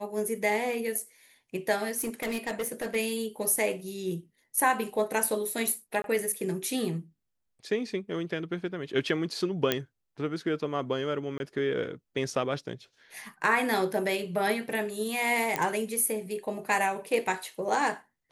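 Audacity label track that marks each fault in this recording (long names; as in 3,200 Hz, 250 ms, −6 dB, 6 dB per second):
1.970000	2.960000	clipping −27.5 dBFS
6.020000	6.040000	drop-out 22 ms
9.720000	9.720000	click −9 dBFS
11.380000	11.400000	drop-out 21 ms
15.560000	15.560000	click −12 dBFS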